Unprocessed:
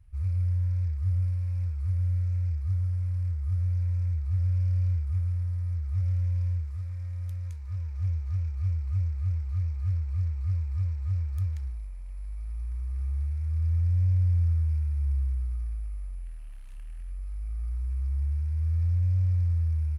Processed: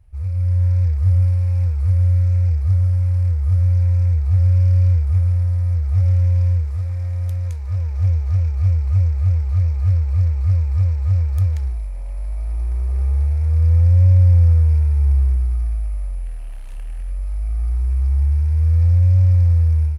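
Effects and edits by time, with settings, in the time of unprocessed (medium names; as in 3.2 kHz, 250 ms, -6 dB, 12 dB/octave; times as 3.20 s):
11.95–15.36 s: peaking EQ 440 Hz +5 dB 2.1 oct
whole clip: high-order bell 520 Hz +8 dB; level rider gain up to 7.5 dB; trim +4 dB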